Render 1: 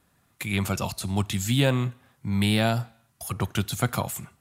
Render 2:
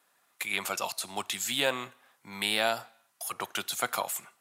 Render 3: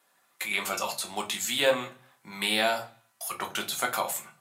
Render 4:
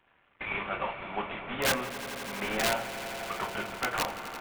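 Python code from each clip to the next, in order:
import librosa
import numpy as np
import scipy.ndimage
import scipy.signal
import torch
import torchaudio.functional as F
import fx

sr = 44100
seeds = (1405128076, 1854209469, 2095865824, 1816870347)

y1 = scipy.signal.sosfilt(scipy.signal.butter(2, 590.0, 'highpass', fs=sr, output='sos'), x)
y2 = fx.room_shoebox(y1, sr, seeds[0], volume_m3=120.0, walls='furnished', distance_m=1.1)
y3 = fx.cvsd(y2, sr, bps=16000)
y3 = (np.mod(10.0 ** (20.5 / 20.0) * y3 + 1.0, 2.0) - 1.0) / 10.0 ** (20.5 / 20.0)
y3 = fx.echo_swell(y3, sr, ms=85, loudest=5, wet_db=-15.5)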